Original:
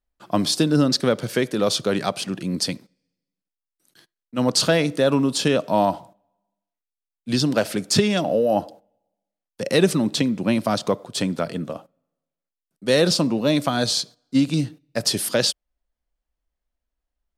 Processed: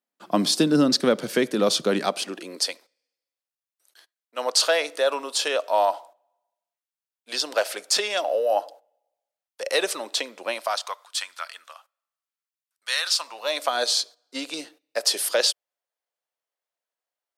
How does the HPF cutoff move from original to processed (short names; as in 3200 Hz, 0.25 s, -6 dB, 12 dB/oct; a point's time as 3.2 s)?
HPF 24 dB/oct
1.9 s 180 Hz
2.73 s 520 Hz
10.5 s 520 Hz
11.04 s 1100 Hz
13.1 s 1100 Hz
13.76 s 450 Hz